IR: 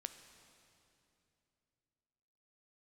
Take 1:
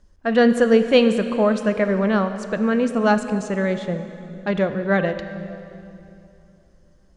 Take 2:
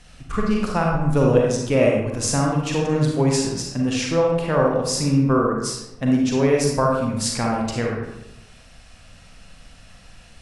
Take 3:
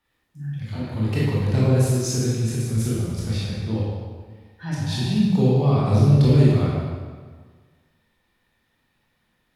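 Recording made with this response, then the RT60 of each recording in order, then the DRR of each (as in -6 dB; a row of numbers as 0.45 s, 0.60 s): 1; 2.8 s, 0.90 s, 1.6 s; 8.5 dB, -1.5 dB, -7.0 dB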